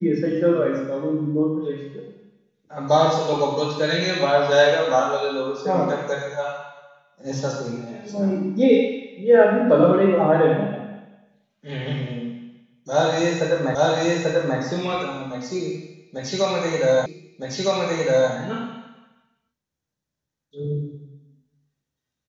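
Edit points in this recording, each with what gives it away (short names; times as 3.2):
13.75 repeat of the last 0.84 s
17.06 repeat of the last 1.26 s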